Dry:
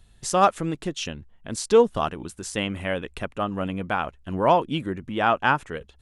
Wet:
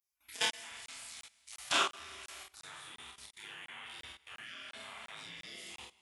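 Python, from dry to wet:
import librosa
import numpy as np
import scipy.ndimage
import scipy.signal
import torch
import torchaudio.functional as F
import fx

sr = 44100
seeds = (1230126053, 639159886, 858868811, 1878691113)

p1 = fx.spec_blur(x, sr, span_ms=98.0)
p2 = scipy.signal.sosfilt(scipy.signal.butter(4, 150.0, 'highpass', fs=sr, output='sos'), p1)
p3 = fx.peak_eq(p2, sr, hz=1000.0, db=15.0, octaves=1.3, at=(0.72, 1.52))
p4 = fx.spec_gate(p3, sr, threshold_db=-30, keep='weak')
p5 = fx.rev_schroeder(p4, sr, rt60_s=1.5, comb_ms=26, drr_db=4.0)
p6 = fx.level_steps(p5, sr, step_db=21)
p7 = fx.high_shelf(p6, sr, hz=6200.0, db=-6.0, at=(2.48, 3.25))
p8 = p7 + fx.room_early_taps(p7, sr, ms=(29, 47), db=(-4.0, -4.0), dry=0)
p9 = fx.buffer_crackle(p8, sr, first_s=0.51, period_s=0.35, block=1024, kind='zero')
y = F.gain(torch.from_numpy(p9), 12.0).numpy()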